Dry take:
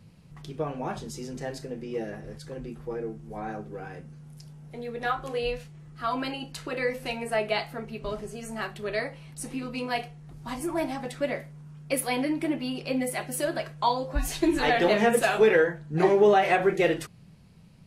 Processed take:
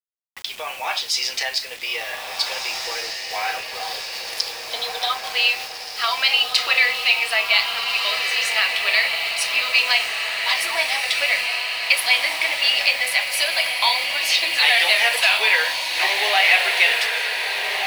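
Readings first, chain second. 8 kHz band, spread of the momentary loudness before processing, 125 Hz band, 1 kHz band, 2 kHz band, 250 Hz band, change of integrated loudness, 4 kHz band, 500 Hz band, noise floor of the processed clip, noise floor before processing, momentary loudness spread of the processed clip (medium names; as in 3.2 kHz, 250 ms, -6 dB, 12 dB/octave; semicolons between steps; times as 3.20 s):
+11.0 dB, 19 LU, under -20 dB, +3.5 dB, +15.0 dB, under -20 dB, +9.5 dB, +21.0 dB, -6.5 dB, -33 dBFS, -52 dBFS, 11 LU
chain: recorder AGC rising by 13 dB/s; high-pass 740 Hz 24 dB/octave; time-frequency box 3.60–5.30 s, 1.3–3 kHz -21 dB; high-order bell 3.3 kHz +14.5 dB; in parallel at -2 dB: peak limiter -12 dBFS, peak gain reduction 10.5 dB; on the sum: word length cut 6-bit, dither none; on a send: echo that smears into a reverb 1671 ms, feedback 59%, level -4 dB; on the sum: trim -2 dB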